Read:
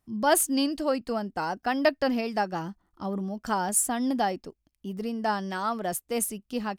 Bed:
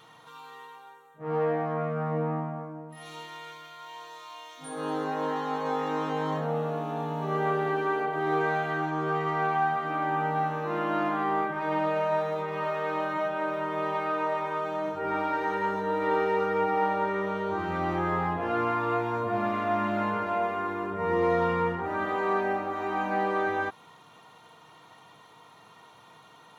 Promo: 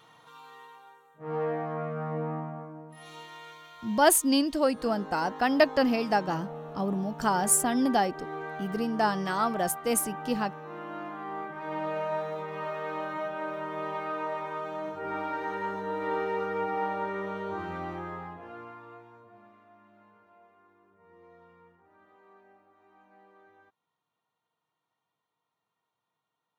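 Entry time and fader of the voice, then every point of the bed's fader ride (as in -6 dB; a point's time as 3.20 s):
3.75 s, +1.5 dB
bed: 4.04 s -3.5 dB
4.36 s -11 dB
11.17 s -11 dB
11.95 s -4.5 dB
17.62 s -4.5 dB
19.74 s -31.5 dB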